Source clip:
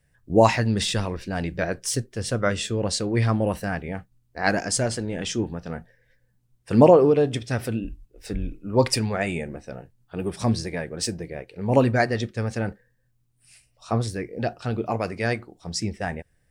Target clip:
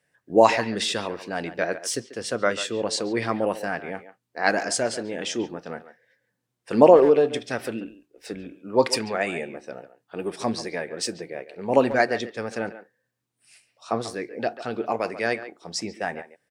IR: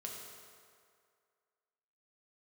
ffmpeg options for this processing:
-filter_complex "[0:a]highpass=300,highshelf=f=7.9k:g=-7,asplit=2[a][b];[b]adelay=140,highpass=300,lowpass=3.4k,asoftclip=type=hard:threshold=-12dB,volume=-13dB[c];[a][c]amix=inputs=2:normalize=0,volume=1.5dB"

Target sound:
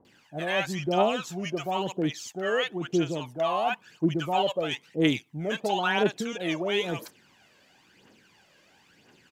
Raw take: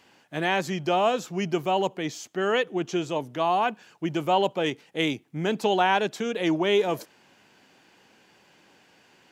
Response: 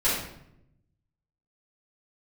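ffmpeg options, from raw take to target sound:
-filter_complex "[0:a]acrossover=split=830[a][b];[b]adelay=50[c];[a][c]amix=inputs=2:normalize=0,aphaser=in_gain=1:out_gain=1:delay=1.9:decay=0.59:speed=0.99:type=triangular,volume=-2.5dB"

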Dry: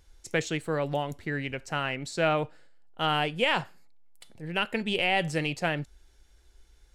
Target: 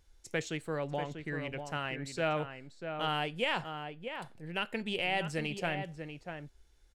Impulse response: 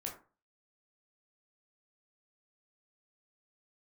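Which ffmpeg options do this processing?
-filter_complex "[0:a]asettb=1/sr,asplit=3[a][b][c];[a]atrim=end=0.824[d];[b]atrim=start=0.82:end=1.29,asetpts=PTS-STARTPTS,afade=t=in:d=0.004:c=qsin,afade=t=out:st=0.466:d=0.004:c=qsin,adynamicsmooth=sensitivity=7.5:basefreq=5.5k[e];[c]atrim=start=1.286[f];[d][e]acrossfade=d=0.004:c1=hsin:c2=qsin[g];[g][f]acrossfade=d=0.004:c1=qsin:c2=hsin,asplit=2[h][i];[i]adelay=641.4,volume=-7dB,highshelf=f=4k:g=-14.4[j];[h][j]amix=inputs=2:normalize=0,volume=-6.5dB"

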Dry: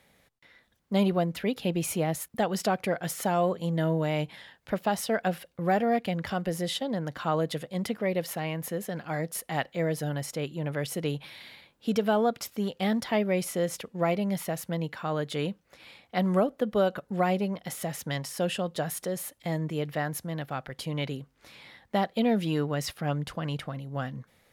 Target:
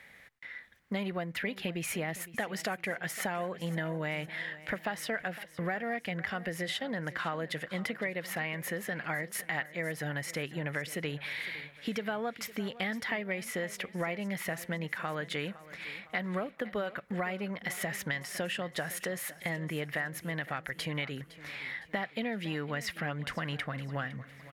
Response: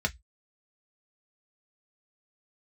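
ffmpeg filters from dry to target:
-filter_complex "[0:a]equalizer=f=1.9k:t=o:w=0.96:g=15,acompressor=threshold=-32dB:ratio=6,asplit=2[a][b];[b]aecho=0:1:510|1020|1530|2040:0.141|0.0664|0.0312|0.0147[c];[a][c]amix=inputs=2:normalize=0"

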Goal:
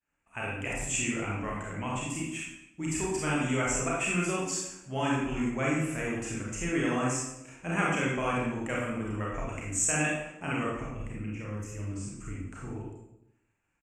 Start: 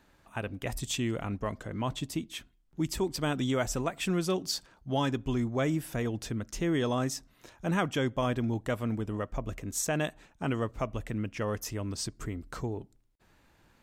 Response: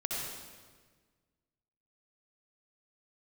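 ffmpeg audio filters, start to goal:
-filter_complex "[0:a]agate=range=-33dB:threshold=-51dB:ratio=3:detection=peak,firequalizer=gain_entry='entry(430,0);entry(2600,12);entry(3800,-13);entry(7500,13);entry(13000,-14)':delay=0.05:min_phase=1,asettb=1/sr,asplit=3[a][b][c];[a]atrim=end=10.744[d];[b]atrim=start=10.74:end=12.76,asetpts=PTS-STARTPTS,afade=t=in:d=0.004:c=qsin,afade=t=out:st=2.016:d=0.004:c=qsin,acrossover=split=340[e][f];[f]acompressor=threshold=-46dB:ratio=3[g];[e][g]amix=inputs=2:normalize=0[h];[c]atrim=start=12.756[i];[d][h]acrossfade=d=0.004:c1=hsin:c2=qsin[j];[j][i]acrossfade=d=0.004:c1=qsin:c2=hsin[k];[1:a]atrim=start_sample=2205,asetrate=88200,aresample=44100[l];[k][l]afir=irnorm=-1:irlink=0"

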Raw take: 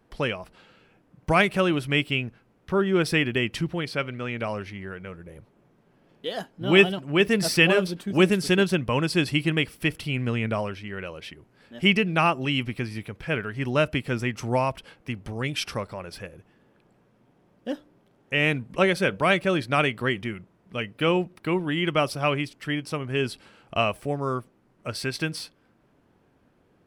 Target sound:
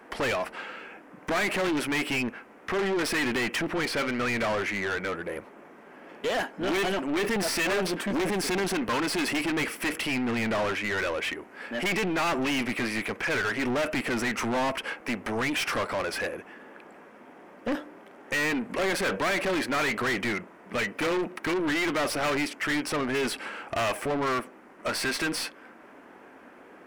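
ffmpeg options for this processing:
-filter_complex "[0:a]acrossover=split=1100[a][b];[a]crystalizer=i=7.5:c=0[c];[c][b]amix=inputs=2:normalize=0,aeval=exprs='(tanh(22.4*val(0)+0.55)-tanh(0.55))/22.4':c=same,equalizer=f=125:t=o:w=1:g=-12,equalizer=f=250:t=o:w=1:g=6,equalizer=f=2k:t=o:w=1:g=5,equalizer=f=4k:t=o:w=1:g=-9,asplit=2[d][e];[e]highpass=f=720:p=1,volume=27dB,asoftclip=type=tanh:threshold=-18.5dB[f];[d][f]amix=inputs=2:normalize=0,lowpass=f=5.3k:p=1,volume=-6dB,volume=-1.5dB"

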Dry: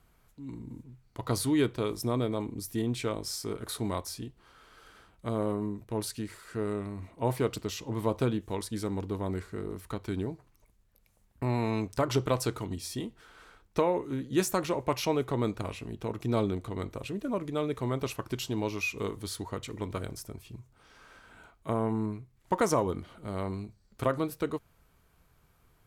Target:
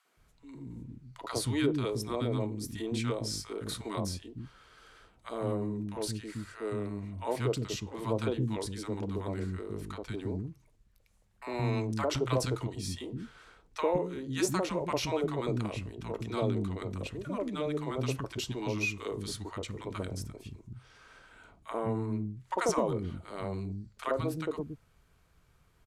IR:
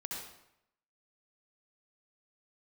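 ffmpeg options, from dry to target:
-filter_complex "[0:a]lowpass=9.5k,acrossover=split=280|870[a][b][c];[b]adelay=50[d];[a]adelay=170[e];[e][d][c]amix=inputs=3:normalize=0"

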